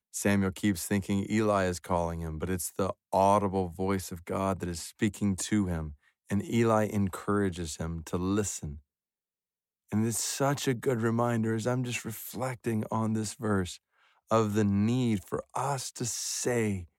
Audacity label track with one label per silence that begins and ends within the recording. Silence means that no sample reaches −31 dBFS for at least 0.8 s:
8.700000	9.930000	silence